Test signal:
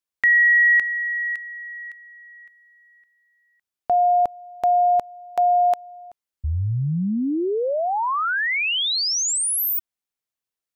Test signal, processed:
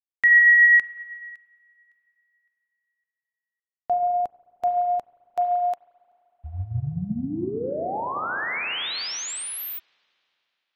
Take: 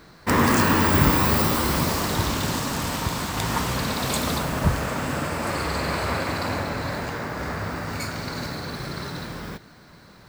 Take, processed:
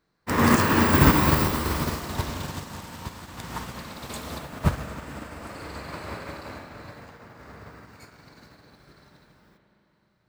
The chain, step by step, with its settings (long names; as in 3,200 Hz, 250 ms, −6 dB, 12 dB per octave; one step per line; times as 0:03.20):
spring reverb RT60 3.5 s, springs 34/43 ms, chirp 60 ms, DRR 3 dB
expander for the loud parts 2.5 to 1, over −32 dBFS
level +2 dB